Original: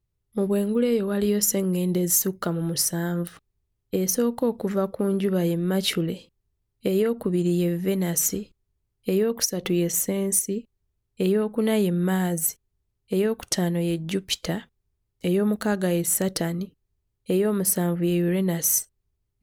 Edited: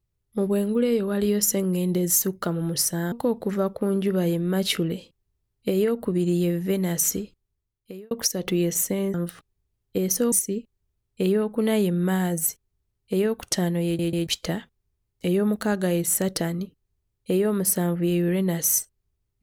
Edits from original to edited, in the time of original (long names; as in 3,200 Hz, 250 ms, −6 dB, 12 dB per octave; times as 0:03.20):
0:03.12–0:04.30: move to 0:10.32
0:08.35–0:09.29: fade out linear
0:13.85: stutter in place 0.14 s, 3 plays